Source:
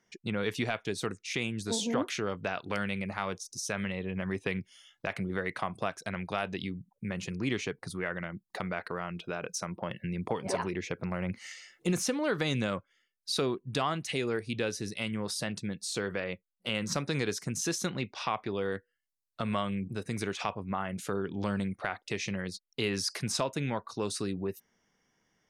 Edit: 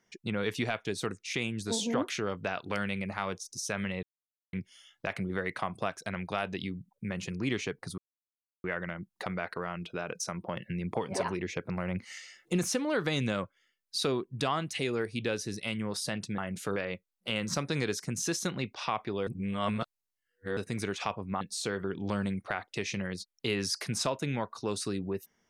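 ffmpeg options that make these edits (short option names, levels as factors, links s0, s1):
-filter_complex "[0:a]asplit=10[s0][s1][s2][s3][s4][s5][s6][s7][s8][s9];[s0]atrim=end=4.03,asetpts=PTS-STARTPTS,afade=t=out:st=4.026:d=0.004:c=hsin[s10];[s1]atrim=start=4.03:end=4.53,asetpts=PTS-STARTPTS,volume=0[s11];[s2]atrim=start=4.53:end=7.98,asetpts=PTS-STARTPTS,afade=t=in:d=0.004:c=hsin,afade=t=out:st=3.446:d=0.004:c=hsin,apad=pad_dur=0.66[s12];[s3]atrim=start=7.98:end=15.722,asetpts=PTS-STARTPTS,afade=t=in:d=0.004:c=hsin[s13];[s4]atrim=start=20.798:end=21.182[s14];[s5]atrim=start=16.148:end=18.662[s15];[s6]atrim=start=18.658:end=19.962,asetpts=PTS-STARTPTS,areverse[s16];[s7]atrim=start=19.958:end=20.802[s17];[s8]atrim=start=15.718:end=16.152[s18];[s9]atrim=start=21.178[s19];[s10][s11][s12][s13]concat=n=4:v=0:a=1[s20];[s20][s14]acrossfade=d=0.004:c1=hsin:c2=hsin[s21];[s21][s15]acrossfade=d=0.004:c1=hsin:c2=hsin[s22];[s22][s16]acrossfade=d=0.004:c1=hsin:c2=hsin[s23];[s23][s17]acrossfade=d=0.004:c1=hsin:c2=hsin[s24];[s24][s18]acrossfade=d=0.004:c1=hsin:c2=hsin[s25];[s25][s19]acrossfade=d=0.004:c1=hsin:c2=hsin"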